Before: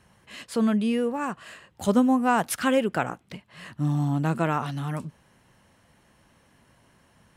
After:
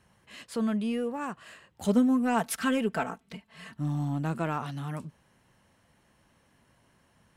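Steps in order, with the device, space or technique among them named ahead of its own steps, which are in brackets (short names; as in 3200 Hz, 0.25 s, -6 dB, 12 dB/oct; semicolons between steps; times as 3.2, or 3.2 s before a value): 1.84–3.79 comb 4.5 ms, depth 74%; parallel distortion (in parallel at -12 dB: hard clip -24 dBFS, distortion -6 dB); on the sum: gain -7 dB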